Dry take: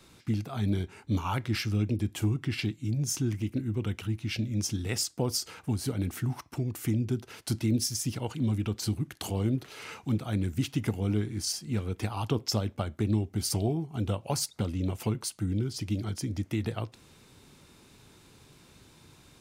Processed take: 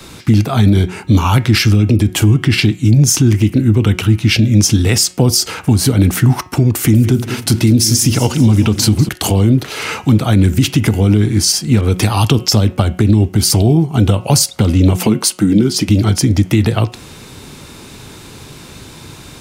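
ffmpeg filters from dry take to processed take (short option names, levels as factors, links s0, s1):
-filter_complex "[0:a]asettb=1/sr,asplit=3[s0][s1][s2];[s0]atrim=end=6.654[s3];[s1]atrim=start=6.65:end=9.09,asetpts=PTS-STARTPTS,afade=t=in:d=0.004:c=qsin,afade=t=out:st=2.436:d=0.004:c=qsin,aecho=1:1:194|388|582|776|970:0.178|0.0942|0.05|0.0265|0.014,atrim=end_sample=107604[s4];[s2]atrim=start=9.086[s5];[s3][s4]acrossfade=d=0.004:c1=hsin:c2=qsin[s6];[s6][s5]acrossfade=d=0.004:c1=qsin:c2=hsin,asettb=1/sr,asplit=3[s7][s8][s9];[s7]atrim=end=11.814[s10];[s8]atrim=start=11.81:end=12.47,asetpts=PTS-STARTPTS,afade=t=in:d=0.004:c=qsin,afade=t=out:st=0.656:d=0.004:c=qsin,adynamicequalizer=threshold=0.002:dfrequency=3100:dqfactor=0.7:tfrequency=3100:tqfactor=0.7:attack=5:release=100:ratio=0.375:range=2.5:mode=boostabove:tftype=highshelf[s11];[s9]atrim=start=12.466[s12];[s10][s11]acrossfade=d=0.004:c1=hsin:c2=qsin[s13];[s13][s12]acrossfade=d=0.004:c1=qsin:c2=hsin,asettb=1/sr,asplit=3[s14][s15][s16];[s14]atrim=end=14.984[s17];[s15]atrim=start=14.98:end=15.89,asetpts=PTS-STARTPTS,afade=t=in:d=0.004:c=qsin,afade=t=out:st=0.906:d=0.004:c=qsin,lowshelf=f=140:t=q:w=1.5:g=-10.5[s18];[s16]atrim=start=15.886[s19];[s17][s18]acrossfade=d=0.004:c1=hsin:c2=qsin[s20];[s20][s19]acrossfade=d=0.004:c1=qsin:c2=hsin,acrossover=split=300|3000[s21][s22][s23];[s22]acompressor=threshold=0.0158:ratio=6[s24];[s21][s24][s23]amix=inputs=3:normalize=0,bandreject=f=182.1:t=h:w=4,bandreject=f=364.2:t=h:w=4,bandreject=f=546.3:t=h:w=4,bandreject=f=728.4:t=h:w=4,bandreject=f=910.5:t=h:w=4,bandreject=f=1092.6:t=h:w=4,bandreject=f=1274.7:t=h:w=4,bandreject=f=1456.8:t=h:w=4,bandreject=f=1638.9:t=h:w=4,bandreject=f=1821:t=h:w=4,bandreject=f=2003.1:t=h:w=4,bandreject=f=2185.2:t=h:w=4,bandreject=f=2367.3:t=h:w=4,bandreject=f=2549.4:t=h:w=4,bandreject=f=2731.5:t=h:w=4,bandreject=f=2913.6:t=h:w=4,bandreject=f=3095.7:t=h:w=4,bandreject=f=3277.8:t=h:w=4,alimiter=level_in=13.3:limit=0.891:release=50:level=0:latency=1,volume=0.891"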